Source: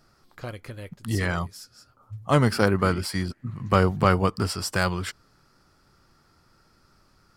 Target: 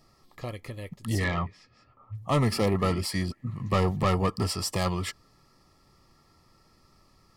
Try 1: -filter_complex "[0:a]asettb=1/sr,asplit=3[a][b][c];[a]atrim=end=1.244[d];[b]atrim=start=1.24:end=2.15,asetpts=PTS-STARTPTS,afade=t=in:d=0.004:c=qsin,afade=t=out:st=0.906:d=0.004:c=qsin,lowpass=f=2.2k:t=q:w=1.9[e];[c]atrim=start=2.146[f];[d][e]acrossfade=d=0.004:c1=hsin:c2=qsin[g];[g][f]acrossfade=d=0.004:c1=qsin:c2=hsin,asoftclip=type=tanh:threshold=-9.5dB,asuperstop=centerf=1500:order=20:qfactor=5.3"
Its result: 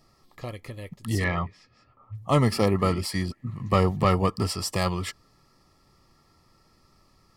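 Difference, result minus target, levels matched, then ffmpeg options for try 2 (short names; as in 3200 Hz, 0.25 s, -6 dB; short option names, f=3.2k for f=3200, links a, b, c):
soft clip: distortion -10 dB
-filter_complex "[0:a]asettb=1/sr,asplit=3[a][b][c];[a]atrim=end=1.244[d];[b]atrim=start=1.24:end=2.15,asetpts=PTS-STARTPTS,afade=t=in:d=0.004:c=qsin,afade=t=out:st=0.906:d=0.004:c=qsin,lowpass=f=2.2k:t=q:w=1.9[e];[c]atrim=start=2.146[f];[d][e]acrossfade=d=0.004:c1=hsin:c2=qsin[g];[g][f]acrossfade=d=0.004:c1=qsin:c2=hsin,asoftclip=type=tanh:threshold=-18dB,asuperstop=centerf=1500:order=20:qfactor=5.3"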